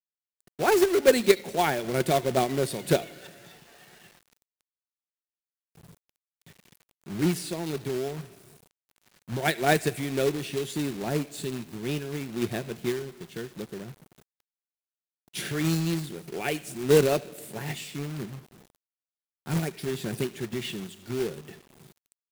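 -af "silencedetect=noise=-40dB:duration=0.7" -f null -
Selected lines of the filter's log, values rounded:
silence_start: 3.52
silence_end: 5.89 | silence_duration: 2.38
silence_start: 8.27
silence_end: 9.29 | silence_duration: 1.02
silence_start: 13.93
silence_end: 15.34 | silence_duration: 1.41
silence_start: 18.40
silence_end: 19.46 | silence_duration: 1.06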